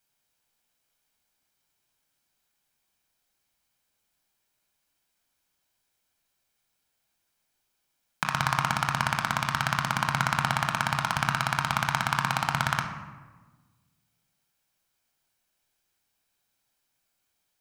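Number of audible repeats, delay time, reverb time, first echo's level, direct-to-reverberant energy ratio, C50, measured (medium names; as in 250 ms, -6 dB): no echo, no echo, 1.4 s, no echo, 3.5 dB, 6.5 dB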